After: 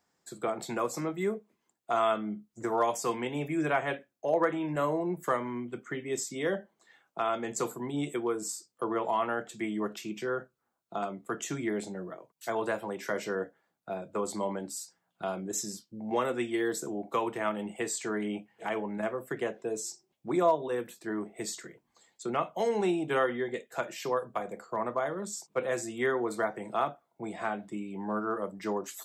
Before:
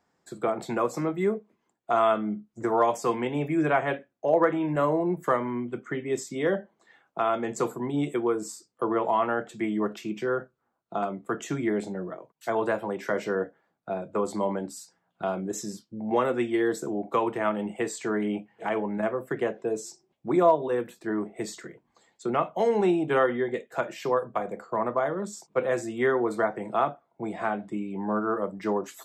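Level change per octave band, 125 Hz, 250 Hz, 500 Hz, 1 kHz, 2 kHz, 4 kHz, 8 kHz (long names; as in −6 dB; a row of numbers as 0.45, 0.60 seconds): −5.5, −5.5, −5.0, −4.5, −3.0, +0.5, +3.5 decibels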